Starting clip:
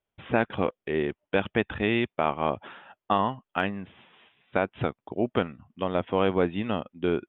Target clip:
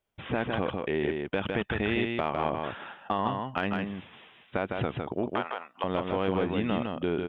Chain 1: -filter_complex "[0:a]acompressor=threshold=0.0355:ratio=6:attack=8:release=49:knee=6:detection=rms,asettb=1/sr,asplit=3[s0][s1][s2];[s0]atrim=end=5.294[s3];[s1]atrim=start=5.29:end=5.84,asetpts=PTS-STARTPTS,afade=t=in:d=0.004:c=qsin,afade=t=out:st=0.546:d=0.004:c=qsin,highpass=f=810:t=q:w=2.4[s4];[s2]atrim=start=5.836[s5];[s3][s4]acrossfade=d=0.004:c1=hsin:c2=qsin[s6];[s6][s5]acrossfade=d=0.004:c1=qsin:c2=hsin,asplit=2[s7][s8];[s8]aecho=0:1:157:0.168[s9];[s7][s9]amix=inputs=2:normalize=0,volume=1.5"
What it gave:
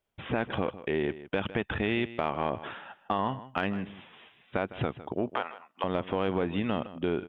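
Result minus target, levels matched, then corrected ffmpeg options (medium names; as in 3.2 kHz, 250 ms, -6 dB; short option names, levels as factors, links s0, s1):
echo-to-direct -11.5 dB
-filter_complex "[0:a]acompressor=threshold=0.0355:ratio=6:attack=8:release=49:knee=6:detection=rms,asettb=1/sr,asplit=3[s0][s1][s2];[s0]atrim=end=5.294[s3];[s1]atrim=start=5.29:end=5.84,asetpts=PTS-STARTPTS,afade=t=in:d=0.004:c=qsin,afade=t=out:st=0.546:d=0.004:c=qsin,highpass=f=810:t=q:w=2.4[s4];[s2]atrim=start=5.836[s5];[s3][s4]acrossfade=d=0.004:c1=hsin:c2=qsin[s6];[s6][s5]acrossfade=d=0.004:c1=qsin:c2=hsin,asplit=2[s7][s8];[s8]aecho=0:1:157:0.631[s9];[s7][s9]amix=inputs=2:normalize=0,volume=1.5"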